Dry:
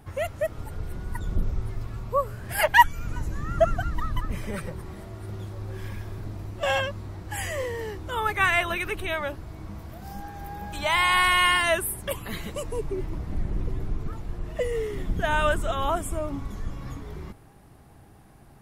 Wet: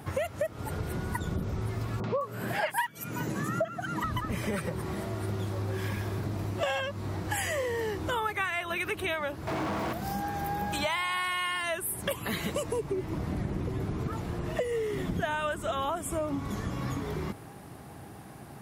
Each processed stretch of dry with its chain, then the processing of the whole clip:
0:02.00–0:04.04: high-pass filter 130 Hz 24 dB per octave + upward compression, threshold −30 dBFS + three-band delay without the direct sound lows, mids, highs 40/210 ms, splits 1,100/5,300 Hz
0:09.47–0:09.93: mains-hum notches 50/100/150/200/250/300/350/400/450 Hz + mid-hump overdrive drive 43 dB, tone 1,100 Hz, clips at −28.5 dBFS
whole clip: high-pass filter 110 Hz 12 dB per octave; downward compressor 8 to 1, threshold −36 dBFS; level +8 dB

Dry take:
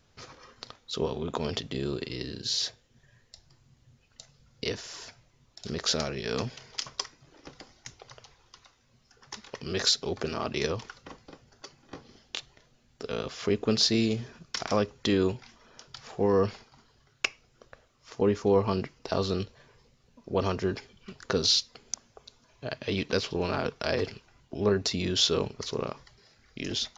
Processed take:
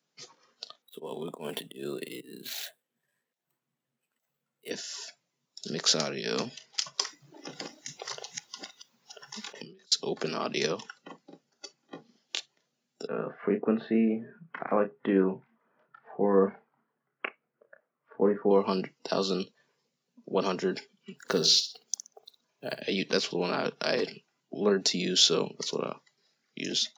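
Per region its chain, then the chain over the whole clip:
0:00.82–0:04.71: running median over 9 samples + low-shelf EQ 250 Hz −8 dB + volume swells 139 ms
0:07.01–0:09.92: delay that plays each chunk backwards 556 ms, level −5 dB + compressor whose output falls as the input rises −45 dBFS + one half of a high-frequency compander decoder only
0:13.07–0:18.51: low-pass filter 1,900 Hz 24 dB per octave + double-tracking delay 31 ms −8 dB
0:21.19–0:22.81: one scale factor per block 7 bits + high-shelf EQ 3,600 Hz −3.5 dB + flutter between parallel walls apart 10.6 metres, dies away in 0.35 s
whole clip: Butterworth high-pass 150 Hz 48 dB per octave; noise reduction from a noise print of the clip's start 14 dB; high-shelf EQ 5,000 Hz +7 dB

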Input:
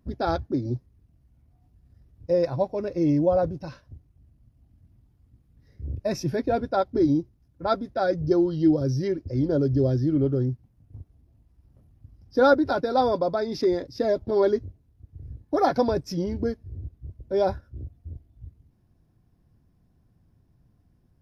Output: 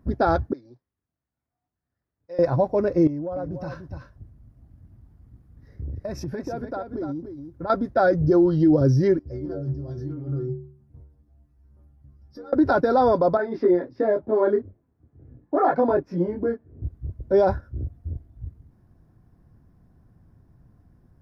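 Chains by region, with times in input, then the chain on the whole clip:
0:00.53–0:02.39: resonant band-pass 5,500 Hz, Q 1 + high-frequency loss of the air 210 metres + one half of a high-frequency compander decoder only
0:03.07–0:07.70: downward compressor 8 to 1, threshold −35 dBFS + single-tap delay 293 ms −8 dB
0:09.19–0:12.53: compressor whose output falls as the input rises −25 dBFS, ratio −0.5 + stiff-string resonator 69 Hz, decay 0.6 s, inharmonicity 0.008
0:13.37–0:16.82: three-way crossover with the lows and the highs turned down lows −15 dB, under 170 Hz, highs −24 dB, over 3,000 Hz + micro pitch shift up and down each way 14 cents
whole clip: high shelf with overshoot 2,100 Hz −7 dB, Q 1.5; brickwall limiter −17.5 dBFS; level +7 dB

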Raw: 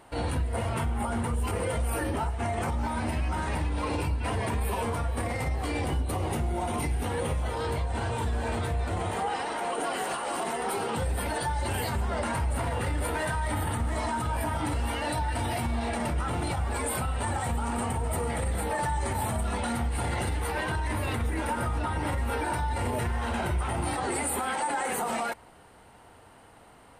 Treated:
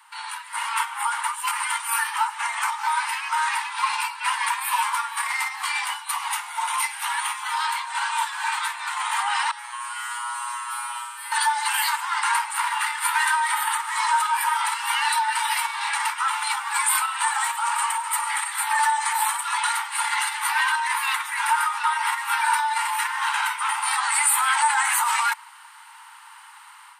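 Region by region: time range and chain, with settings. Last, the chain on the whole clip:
0:09.51–0:11.32: tuned comb filter 120 Hz, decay 0.45 s, mix 100% + flutter between parallel walls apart 10 metres, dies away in 1.1 s
whole clip: Butterworth high-pass 870 Hz 96 dB per octave; automatic gain control gain up to 7.5 dB; level +4.5 dB

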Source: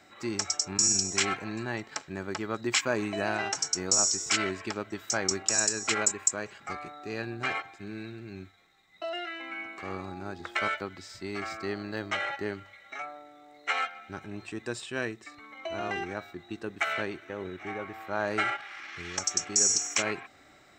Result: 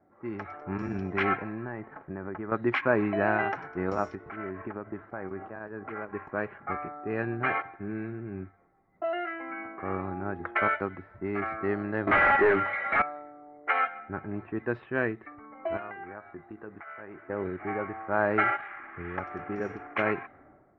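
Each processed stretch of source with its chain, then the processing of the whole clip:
0:01.42–0:02.52: hard clipping −23.5 dBFS + downward compressor, threshold −36 dBFS
0:04.15–0:06.13: high-shelf EQ 4,700 Hz −7 dB + downward compressor 4 to 1, threshold −37 dBFS
0:12.07–0:13.02: mid-hump overdrive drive 28 dB, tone 4,100 Hz, clips at −17.5 dBFS + bad sample-rate conversion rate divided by 4×, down none, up hold
0:15.77–0:17.28: tilt shelving filter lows −7 dB, about 870 Hz + downward compressor, threshold −40 dBFS + double-tracking delay 19 ms −12 dB
whole clip: low-pass filter 2,000 Hz 24 dB per octave; low-pass that shuts in the quiet parts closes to 720 Hz, open at −27 dBFS; automatic gain control gain up to 9 dB; level −4 dB

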